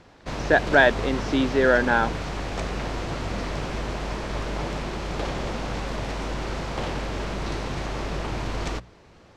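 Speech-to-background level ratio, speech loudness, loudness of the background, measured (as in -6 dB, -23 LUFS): 9.5 dB, -21.0 LUFS, -30.5 LUFS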